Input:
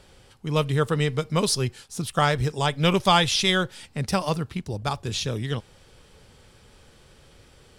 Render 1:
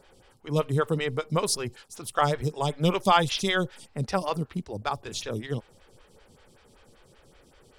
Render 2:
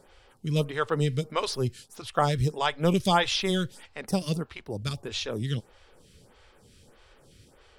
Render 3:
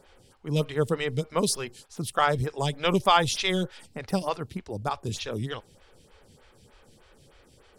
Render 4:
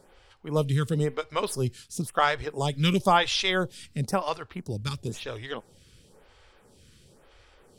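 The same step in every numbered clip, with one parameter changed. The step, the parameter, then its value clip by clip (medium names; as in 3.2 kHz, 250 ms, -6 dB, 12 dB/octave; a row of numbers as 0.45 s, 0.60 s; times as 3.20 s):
lamp-driven phase shifter, rate: 5.2 Hz, 1.6 Hz, 3.3 Hz, 0.98 Hz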